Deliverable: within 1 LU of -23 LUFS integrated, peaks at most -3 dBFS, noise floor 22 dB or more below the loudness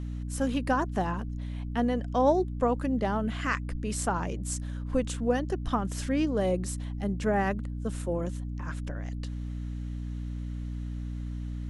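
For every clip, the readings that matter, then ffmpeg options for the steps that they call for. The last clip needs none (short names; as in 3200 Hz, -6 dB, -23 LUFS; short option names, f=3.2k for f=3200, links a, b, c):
hum 60 Hz; harmonics up to 300 Hz; hum level -32 dBFS; loudness -31.0 LUFS; peak -12.5 dBFS; loudness target -23.0 LUFS
-> -af "bandreject=f=60:t=h:w=6,bandreject=f=120:t=h:w=6,bandreject=f=180:t=h:w=6,bandreject=f=240:t=h:w=6,bandreject=f=300:t=h:w=6"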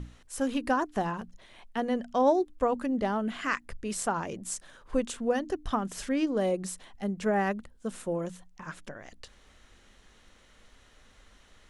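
hum none; loudness -30.5 LUFS; peak -14.0 dBFS; loudness target -23.0 LUFS
-> -af "volume=7.5dB"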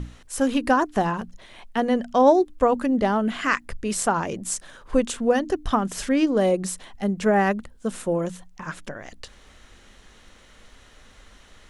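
loudness -23.0 LUFS; peak -6.5 dBFS; noise floor -52 dBFS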